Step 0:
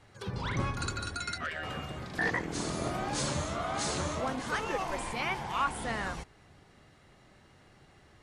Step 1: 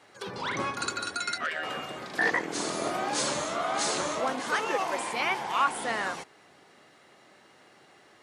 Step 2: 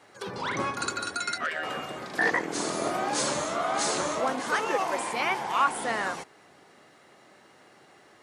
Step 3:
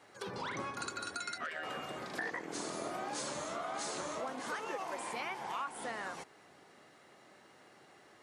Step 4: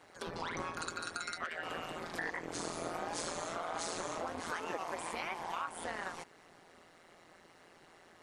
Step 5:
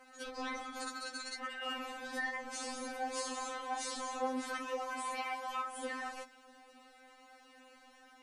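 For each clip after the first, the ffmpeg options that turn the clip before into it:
-af "highpass=310,volume=5dB"
-af "equalizer=f=3.3k:t=o:w=1.5:g=-3,volume=2dB"
-af "acompressor=threshold=-33dB:ratio=4,volume=-4.5dB"
-af "tremolo=f=170:d=0.889,volume=4dB"
-af "afftfilt=real='re*3.46*eq(mod(b,12),0)':imag='im*3.46*eq(mod(b,12),0)':win_size=2048:overlap=0.75,volume=2.5dB"

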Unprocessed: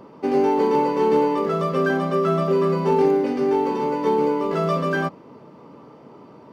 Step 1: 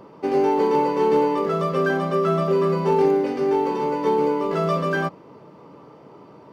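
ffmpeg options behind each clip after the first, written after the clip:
-af "equalizer=f=240:t=o:w=0.22:g=-8"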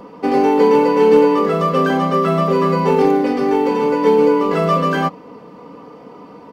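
-af "aecho=1:1:4.1:0.66,volume=6dB"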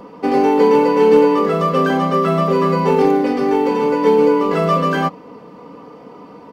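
-af anull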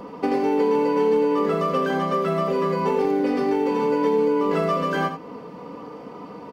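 -filter_complex "[0:a]acompressor=threshold=-20dB:ratio=5,asplit=2[a][b];[b]aecho=0:1:82:0.355[c];[a][c]amix=inputs=2:normalize=0"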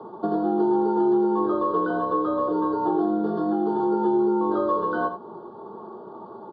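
-af "highpass=f=340:t=q:w=0.5412,highpass=f=340:t=q:w=1.307,lowpass=f=3.4k:t=q:w=0.5176,lowpass=f=3.4k:t=q:w=0.7071,lowpass=f=3.4k:t=q:w=1.932,afreqshift=-82,asuperstop=centerf=2300:order=8:qfactor=1.1"

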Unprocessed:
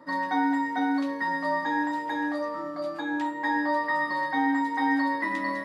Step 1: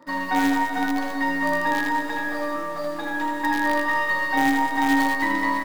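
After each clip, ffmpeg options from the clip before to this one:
-filter_complex "[0:a]asplit=2[a][b];[b]acrusher=bits=4:dc=4:mix=0:aa=0.000001,volume=-5.5dB[c];[a][c]amix=inputs=2:normalize=0,aecho=1:1:80|200|380|650|1055:0.631|0.398|0.251|0.158|0.1"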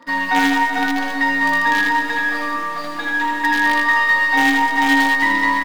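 -filter_complex "[0:a]equalizer=f=2.9k:w=0.57:g=9.5,aecho=1:1:4.2:0.58,asplit=2[a][b];[b]aeval=exprs='clip(val(0),-1,0.112)':c=same,volume=-7dB[c];[a][c]amix=inputs=2:normalize=0,volume=-3dB"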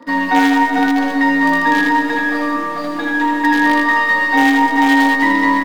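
-filter_complex "[0:a]equalizer=f=330:t=o:w=2.2:g=12,acrossover=split=430|2100[a][b][c];[a]alimiter=limit=-12dB:level=0:latency=1[d];[d][b][c]amix=inputs=3:normalize=0,volume=-1dB"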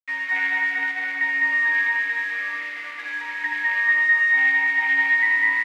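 -af "aeval=exprs='val(0)*gte(abs(val(0)),0.0891)':c=same,bandpass=f=2.1k:t=q:w=5.8:csg=0,aecho=1:1:208:0.631"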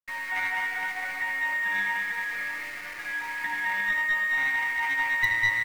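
-filter_complex "[0:a]aecho=1:1:5.6:0.91,acrossover=split=640|1000|2200[a][b][c][d];[d]acrusher=bits=4:dc=4:mix=0:aa=0.000001[e];[a][b][c][e]amix=inputs=4:normalize=0,aeval=exprs='(tanh(4.47*val(0)+0.6)-tanh(0.6))/4.47':c=same"

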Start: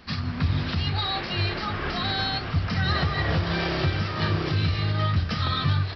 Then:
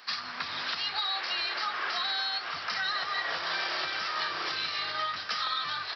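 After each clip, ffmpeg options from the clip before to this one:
-af "highpass=1.2k,equalizer=f=2.6k:t=o:w=1.4:g=-6,acompressor=threshold=-35dB:ratio=6,volume=7dB"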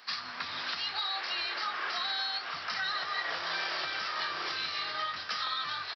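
-filter_complex "[0:a]flanger=delay=4.1:depth=8.9:regen=-83:speed=0.81:shape=triangular,asplit=2[a][b];[b]adelay=23,volume=-14dB[c];[a][c]amix=inputs=2:normalize=0,volume=2dB"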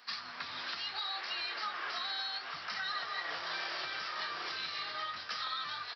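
-af "flanger=delay=4.1:depth=4.7:regen=74:speed=0.68:shape=sinusoidal"

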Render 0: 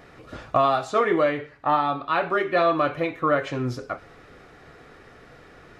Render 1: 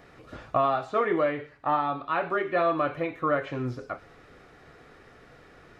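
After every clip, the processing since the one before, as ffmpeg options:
-filter_complex "[0:a]acrossover=split=3200[a][b];[b]acompressor=threshold=-55dB:ratio=4:attack=1:release=60[c];[a][c]amix=inputs=2:normalize=0,volume=-4dB"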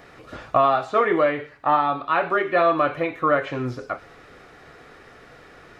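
-af "lowshelf=f=350:g=-5,volume=7dB"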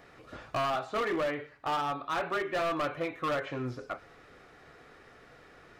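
-af "asoftclip=type=hard:threshold=-19dB,volume=-8dB"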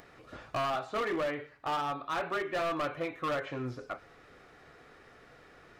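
-af "acompressor=mode=upward:threshold=-52dB:ratio=2.5,volume=-1.5dB"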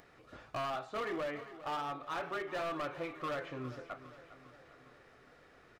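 -af "aecho=1:1:405|810|1215|1620|2025|2430:0.188|0.107|0.0612|0.0349|0.0199|0.0113,volume=-5.5dB"

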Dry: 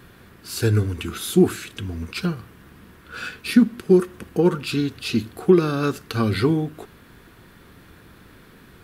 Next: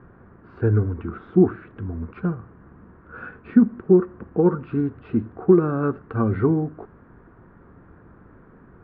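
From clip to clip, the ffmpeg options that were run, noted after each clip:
-af "lowpass=f=1.4k:w=0.5412,lowpass=f=1.4k:w=1.3066"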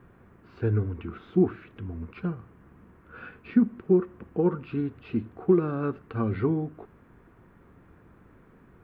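-af "aexciter=amount=4.9:drive=3.2:freq=2.2k,volume=-6dB"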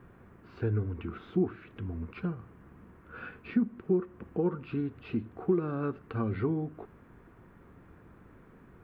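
-af "acompressor=threshold=-34dB:ratio=1.5"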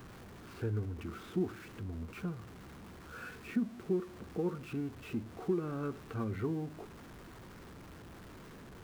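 -af "aeval=exprs='val(0)+0.5*0.00794*sgn(val(0))':c=same,volume=-6dB"

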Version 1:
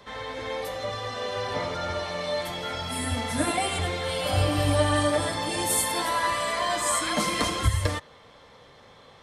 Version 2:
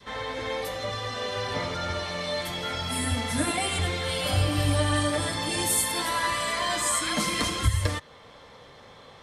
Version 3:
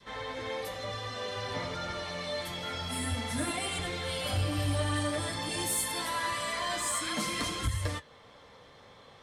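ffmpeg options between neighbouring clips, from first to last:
-filter_complex "[0:a]adynamicequalizer=threshold=0.0126:dfrequency=680:dqfactor=0.76:tfrequency=680:tqfactor=0.76:attack=5:release=100:ratio=0.375:range=3:mode=cutabove:tftype=bell,asplit=2[a][b];[b]alimiter=limit=-19dB:level=0:latency=1:release=466,volume=-1dB[c];[a][c]amix=inputs=2:normalize=0,volume=-3dB"
-af "flanger=delay=5.7:depth=6.1:regen=-64:speed=0.52:shape=triangular,asoftclip=type=tanh:threshold=-20dB,volume=-1dB"

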